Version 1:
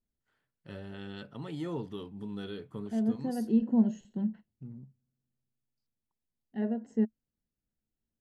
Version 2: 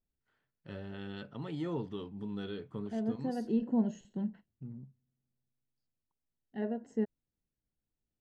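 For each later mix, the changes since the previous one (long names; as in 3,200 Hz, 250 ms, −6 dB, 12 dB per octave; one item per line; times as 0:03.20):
first voice: add high-frequency loss of the air 72 metres
second voice: add parametric band 220 Hz −6.5 dB 0.26 octaves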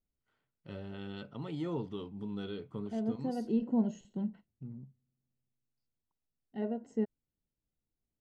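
master: add notch filter 1,700 Hz, Q 5.8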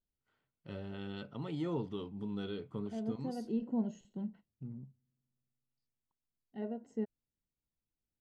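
second voice −4.5 dB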